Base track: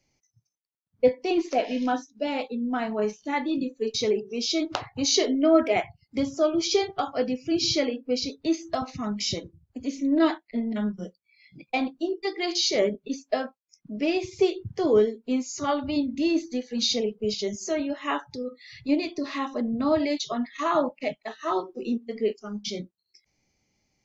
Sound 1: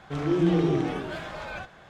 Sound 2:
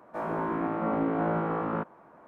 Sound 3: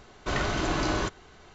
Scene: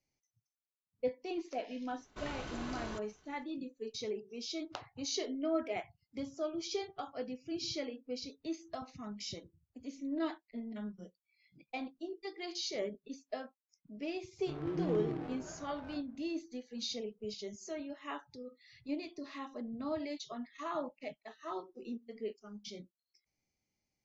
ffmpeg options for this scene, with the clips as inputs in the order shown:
ffmpeg -i bed.wav -i cue0.wav -i cue1.wav -i cue2.wav -filter_complex "[0:a]volume=-14.5dB[link_01];[1:a]adynamicsmooth=sensitivity=3:basefreq=620[link_02];[3:a]atrim=end=1.54,asetpts=PTS-STARTPTS,volume=-15.5dB,afade=type=in:duration=0.004:curve=hsin,afade=type=out:start_time=1.536:duration=0.004:curve=hsin,adelay=1900[link_03];[link_02]atrim=end=1.89,asetpts=PTS-STARTPTS,volume=-13dB,afade=type=in:duration=0.05,afade=type=out:start_time=1.84:duration=0.05,adelay=14360[link_04];[link_01][link_03][link_04]amix=inputs=3:normalize=0" out.wav

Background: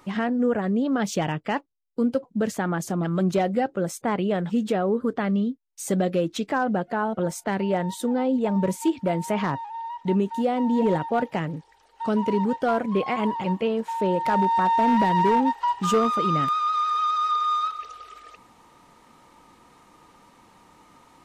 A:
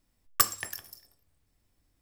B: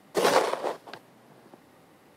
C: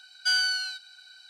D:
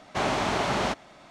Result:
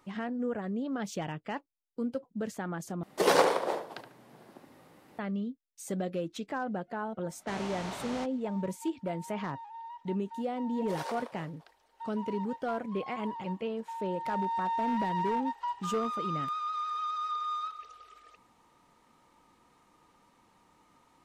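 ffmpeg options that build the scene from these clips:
ffmpeg -i bed.wav -i cue0.wav -i cue1.wav -i cue2.wav -i cue3.wav -filter_complex "[2:a]asplit=2[link_01][link_02];[0:a]volume=-10.5dB[link_03];[link_01]asplit=2[link_04][link_05];[link_05]adelay=72,lowpass=frequency=2000:poles=1,volume=-6dB,asplit=2[link_06][link_07];[link_07]adelay=72,lowpass=frequency=2000:poles=1,volume=0.33,asplit=2[link_08][link_09];[link_09]adelay=72,lowpass=frequency=2000:poles=1,volume=0.33,asplit=2[link_10][link_11];[link_11]adelay=72,lowpass=frequency=2000:poles=1,volume=0.33[link_12];[link_04][link_06][link_08][link_10][link_12]amix=inputs=5:normalize=0[link_13];[4:a]highshelf=frequency=4900:gain=5.5[link_14];[link_02]highpass=530[link_15];[link_03]asplit=2[link_16][link_17];[link_16]atrim=end=3.034[link_18];[link_13]atrim=end=2.16,asetpts=PTS-STARTPTS,volume=-2dB[link_19];[link_17]atrim=start=5.186[link_20];[link_14]atrim=end=1.3,asetpts=PTS-STARTPTS,volume=-14.5dB,afade=type=in:duration=0.004:curve=hsin,afade=type=out:start_time=1.296:duration=0.004:curve=hsin,adelay=7320[link_21];[link_15]atrim=end=2.16,asetpts=PTS-STARTPTS,volume=-16.5dB,afade=type=in:duration=0.004:curve=hsin,afade=type=out:start_time=2.156:duration=0.004:curve=hsin,adelay=10730[link_22];[link_18][link_19]acrossfade=duration=0.004:curve1=hsin:curve2=hsin[link_23];[link_23][link_20]acrossfade=duration=0.004:curve1=hsin:curve2=hsin[link_24];[link_24][link_21][link_22]amix=inputs=3:normalize=0" out.wav

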